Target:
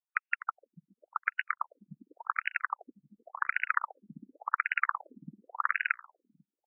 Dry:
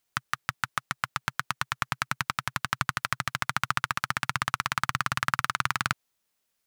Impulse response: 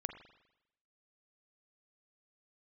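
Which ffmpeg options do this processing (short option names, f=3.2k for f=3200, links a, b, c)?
-filter_complex "[0:a]highshelf=f=3.8k:t=q:w=3:g=-10.5,asplit=2[a][b];[b]adelay=250,highpass=300,lowpass=3.4k,asoftclip=type=hard:threshold=-11.5dB,volume=-13dB[c];[a][c]amix=inputs=2:normalize=0,afwtdn=0.0251,asplit=2[d][e];[e]adelay=494,lowpass=f=3.2k:p=1,volume=-21dB,asplit=2[f][g];[g]adelay=494,lowpass=f=3.2k:p=1,volume=0.21[h];[f][h]amix=inputs=2:normalize=0[i];[d][i]amix=inputs=2:normalize=0,afftfilt=real='re*between(b*sr/1024,230*pow(2100/230,0.5+0.5*sin(2*PI*0.9*pts/sr))/1.41,230*pow(2100/230,0.5+0.5*sin(2*PI*0.9*pts/sr))*1.41)':imag='im*between(b*sr/1024,230*pow(2100/230,0.5+0.5*sin(2*PI*0.9*pts/sr))/1.41,230*pow(2100/230,0.5+0.5*sin(2*PI*0.9*pts/sr))*1.41)':win_size=1024:overlap=0.75"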